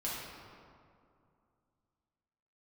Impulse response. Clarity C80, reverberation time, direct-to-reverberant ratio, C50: 0.5 dB, 2.4 s, -7.5 dB, -1.5 dB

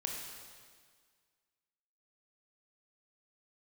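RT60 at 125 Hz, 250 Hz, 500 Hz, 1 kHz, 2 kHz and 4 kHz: 1.7, 1.8, 1.7, 1.8, 1.7, 1.7 s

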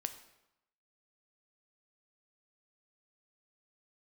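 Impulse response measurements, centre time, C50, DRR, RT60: 10 ms, 11.5 dB, 8.5 dB, 0.90 s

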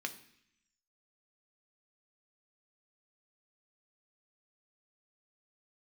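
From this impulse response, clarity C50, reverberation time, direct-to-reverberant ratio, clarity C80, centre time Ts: 14.0 dB, 0.70 s, 6.0 dB, 16.5 dB, 7 ms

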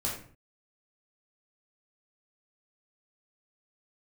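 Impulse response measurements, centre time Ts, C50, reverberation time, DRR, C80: 37 ms, 4.0 dB, 0.45 s, -5.0 dB, 8.0 dB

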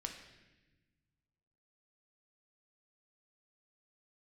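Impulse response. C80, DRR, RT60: 8.0 dB, 2.5 dB, 1.1 s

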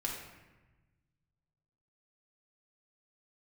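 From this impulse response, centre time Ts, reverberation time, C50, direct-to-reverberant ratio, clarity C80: 51 ms, 1.1 s, 2.5 dB, -2.5 dB, 5.0 dB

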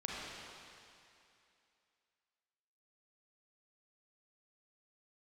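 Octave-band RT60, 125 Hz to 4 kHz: 2.3, 2.5, 2.6, 2.7, 2.7, 2.6 s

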